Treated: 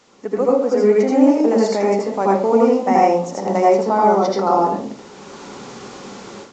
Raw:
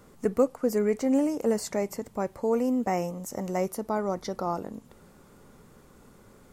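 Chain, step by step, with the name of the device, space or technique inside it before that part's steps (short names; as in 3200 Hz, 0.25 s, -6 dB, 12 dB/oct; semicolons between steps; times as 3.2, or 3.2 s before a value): filmed off a television (BPF 240–6500 Hz; bell 860 Hz +5.5 dB 0.36 oct; reverb RT60 0.45 s, pre-delay 75 ms, DRR -4 dB; white noise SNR 30 dB; AGC gain up to 15.5 dB; gain -1 dB; AAC 64 kbps 16000 Hz)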